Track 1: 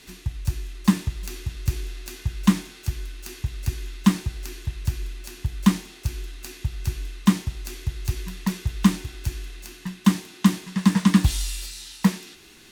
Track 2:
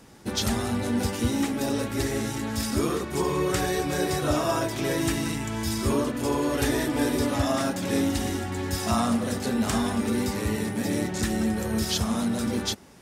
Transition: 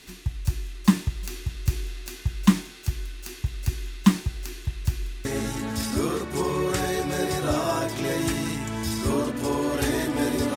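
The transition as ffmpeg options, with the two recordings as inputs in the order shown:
ffmpeg -i cue0.wav -i cue1.wav -filter_complex "[0:a]apad=whole_dur=10.56,atrim=end=10.56,atrim=end=5.252[link_01];[1:a]atrim=start=2.048:end=7.36[link_02];[link_01][link_02]acrossfade=duration=0.004:curve1=hsin:curve2=hsin,asplit=2[link_03][link_04];[link_04]afade=type=in:start_time=4.9:duration=0.01,afade=type=out:start_time=5.25:duration=0.01,aecho=0:1:460|920:0.316228|0.0474342[link_05];[link_03][link_05]amix=inputs=2:normalize=0" out.wav

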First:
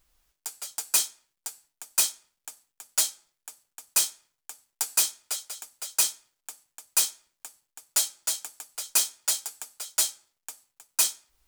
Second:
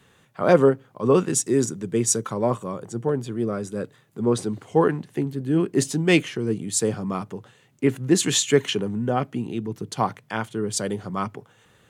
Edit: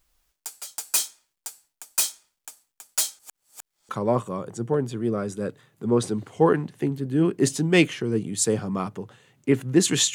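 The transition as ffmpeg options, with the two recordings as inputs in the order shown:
ffmpeg -i cue0.wav -i cue1.wav -filter_complex "[0:a]apad=whole_dur=10.14,atrim=end=10.14,asplit=2[link_01][link_02];[link_01]atrim=end=3.192[link_03];[link_02]atrim=start=3.188:end=3.892,asetpts=PTS-STARTPTS,areverse[link_04];[1:a]atrim=start=2.238:end=8.49[link_05];[link_03][link_04]acrossfade=duration=0.004:curve1=hsin:curve2=hsin[link_06];[link_06][link_05]acrossfade=duration=0.004:curve1=hsin:curve2=hsin" out.wav

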